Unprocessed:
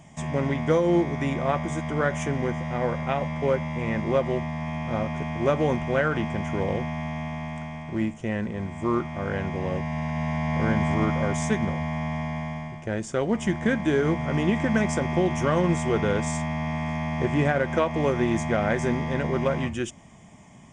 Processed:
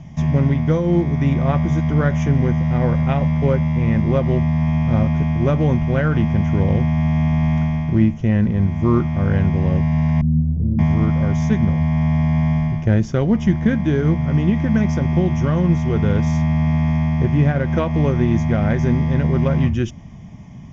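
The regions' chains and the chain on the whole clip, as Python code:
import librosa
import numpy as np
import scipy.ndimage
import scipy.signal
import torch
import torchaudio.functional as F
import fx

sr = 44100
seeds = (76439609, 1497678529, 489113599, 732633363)

y = fx.chain(x, sr, fx.cheby2_lowpass(hz=2100.0, order=4, stop_db=80),
    fx.ensemble(), at=(10.21, 10.79))
y = scipy.signal.sosfilt(scipy.signal.butter(12, 6400.0, 'lowpass', fs=sr, output='sos'), y)
y = fx.bass_treble(y, sr, bass_db=15, treble_db=1)
y = fx.rider(y, sr, range_db=10, speed_s=0.5)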